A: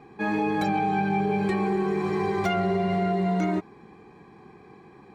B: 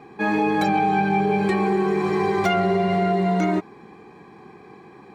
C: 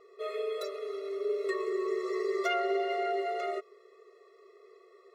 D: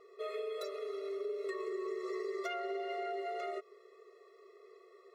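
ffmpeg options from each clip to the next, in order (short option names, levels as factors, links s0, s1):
-af "lowshelf=f=110:g=-9,volume=1.88"
-af "afftfilt=real='re*eq(mod(floor(b*sr/1024/360),2),1)':imag='im*eq(mod(floor(b*sr/1024/360),2),1)':win_size=1024:overlap=0.75,volume=0.473"
-af "acompressor=threshold=0.0178:ratio=4,volume=0.841"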